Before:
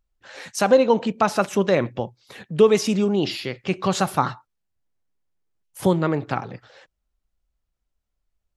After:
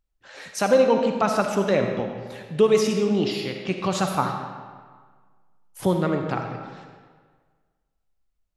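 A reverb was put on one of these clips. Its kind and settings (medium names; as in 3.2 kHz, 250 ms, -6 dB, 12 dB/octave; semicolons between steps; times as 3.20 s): algorithmic reverb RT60 1.6 s, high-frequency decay 0.75×, pre-delay 20 ms, DRR 4 dB; trim -3 dB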